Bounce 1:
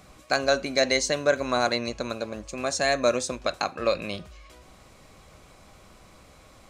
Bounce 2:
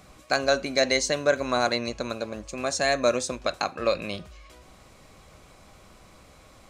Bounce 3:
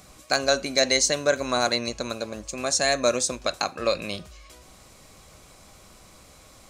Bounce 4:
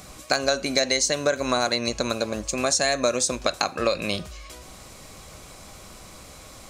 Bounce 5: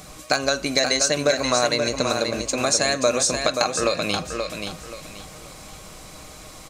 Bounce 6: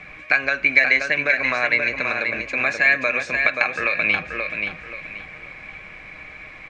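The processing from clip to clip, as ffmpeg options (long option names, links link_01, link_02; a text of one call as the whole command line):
ffmpeg -i in.wav -af anull out.wav
ffmpeg -i in.wav -af "bass=frequency=250:gain=0,treble=frequency=4000:gain=8" out.wav
ffmpeg -i in.wav -af "acompressor=threshold=-26dB:ratio=4,volume=6.5dB" out.wav
ffmpeg -i in.wav -filter_complex "[0:a]aecho=1:1:6.5:0.3,asplit=2[link_01][link_02];[link_02]aecho=0:1:530|1060|1590|2120:0.501|0.145|0.0421|0.0122[link_03];[link_01][link_03]amix=inputs=2:normalize=0,volume=1.5dB" out.wav
ffmpeg -i in.wav -filter_complex "[0:a]lowpass=frequency=2300:width_type=q:width=11,equalizer=frequency=1700:width=6.8:gain=11.5,acrossover=split=700|940[link_01][link_02][link_03];[link_01]alimiter=limit=-19dB:level=0:latency=1:release=218[link_04];[link_04][link_02][link_03]amix=inputs=3:normalize=0,volume=-4.5dB" out.wav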